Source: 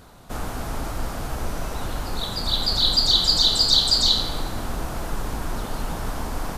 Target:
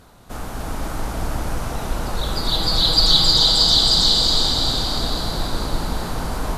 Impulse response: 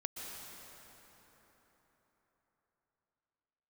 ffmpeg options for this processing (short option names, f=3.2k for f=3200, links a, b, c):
-filter_complex "[0:a]asettb=1/sr,asplit=3[a][b][c];[a]atrim=end=2.254[d];[b]atrim=start=2.25:end=3.27,asetpts=PTS-STARTPTS,afade=t=in:d=0.004:c=qsin,afade=t=out:st=1.016:d=0.004:c=qsin,aecho=1:1:6.2:0.78,atrim=end_sample=44982[e];[c]atrim=start=3.266[f];[d][e]acrossfade=d=0.004:c1=hsin:c2=qsin[g];[g][f]acrossfade=d=0.004:c1=qsin:c2=hsin[h];[1:a]atrim=start_sample=2205,asetrate=26901,aresample=44100[i];[h][i]afir=irnorm=-1:irlink=0"